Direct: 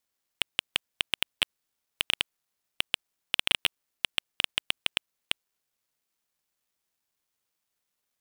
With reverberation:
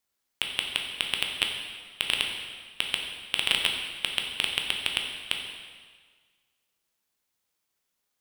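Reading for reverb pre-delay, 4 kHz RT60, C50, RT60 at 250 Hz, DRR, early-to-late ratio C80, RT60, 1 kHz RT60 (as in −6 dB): 6 ms, 1.5 s, 4.0 dB, 1.5 s, 1.5 dB, 5.5 dB, 1.6 s, 1.6 s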